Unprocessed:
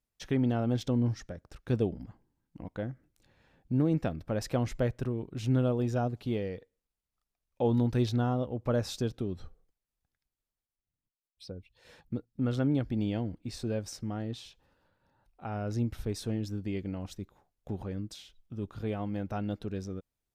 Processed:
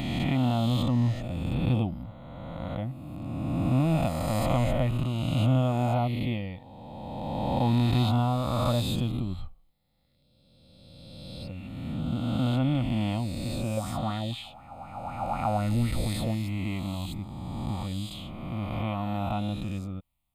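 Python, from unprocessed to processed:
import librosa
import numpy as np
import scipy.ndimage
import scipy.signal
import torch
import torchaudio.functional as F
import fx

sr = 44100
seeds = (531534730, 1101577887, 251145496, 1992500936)

y = fx.spec_swells(x, sr, rise_s=2.41)
y = fx.fixed_phaser(y, sr, hz=1600.0, stages=6)
y = fx.bell_lfo(y, sr, hz=4.0, low_hz=510.0, high_hz=2100.0, db=12, at=(13.77, 16.35))
y = y * librosa.db_to_amplitude(5.0)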